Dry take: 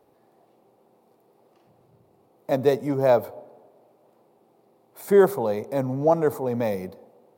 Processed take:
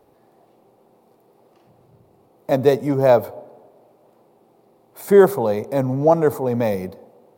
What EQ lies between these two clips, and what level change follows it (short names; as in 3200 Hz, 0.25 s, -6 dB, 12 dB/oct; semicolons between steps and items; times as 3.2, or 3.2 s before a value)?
low shelf 65 Hz +8.5 dB; +4.5 dB